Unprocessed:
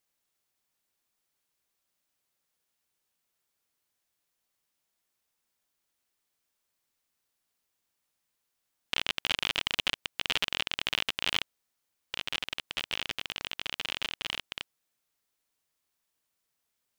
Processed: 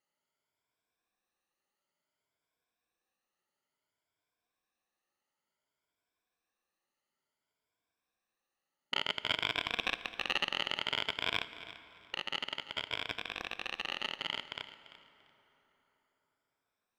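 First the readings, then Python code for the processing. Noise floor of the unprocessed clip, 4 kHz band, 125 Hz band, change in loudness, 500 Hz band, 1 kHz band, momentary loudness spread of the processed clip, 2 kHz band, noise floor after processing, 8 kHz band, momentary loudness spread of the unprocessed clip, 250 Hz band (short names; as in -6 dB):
-82 dBFS, -4.0 dB, -3.0 dB, -3.5 dB, +1.0 dB, +0.5 dB, 12 LU, -2.5 dB, under -85 dBFS, -10.5 dB, 8 LU, -1.0 dB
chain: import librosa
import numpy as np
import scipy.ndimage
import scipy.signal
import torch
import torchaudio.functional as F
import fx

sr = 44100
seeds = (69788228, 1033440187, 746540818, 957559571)

y = fx.spec_ripple(x, sr, per_octave=1.7, drift_hz=0.57, depth_db=13)
y = fx.lowpass(y, sr, hz=1600.0, slope=6)
y = fx.low_shelf(y, sr, hz=180.0, db=-8.5)
y = fx.echo_feedback(y, sr, ms=342, feedback_pct=23, wet_db=-16)
y = fx.rev_plate(y, sr, seeds[0], rt60_s=4.2, hf_ratio=0.6, predelay_ms=0, drr_db=14.0)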